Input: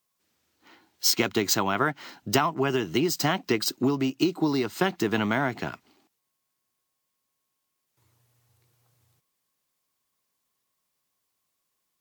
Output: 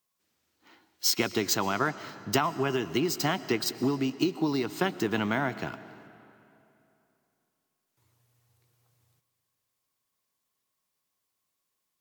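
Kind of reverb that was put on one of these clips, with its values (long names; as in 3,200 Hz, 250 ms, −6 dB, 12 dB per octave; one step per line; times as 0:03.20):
comb and all-pass reverb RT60 2.9 s, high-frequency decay 0.8×, pre-delay 80 ms, DRR 15 dB
level −3 dB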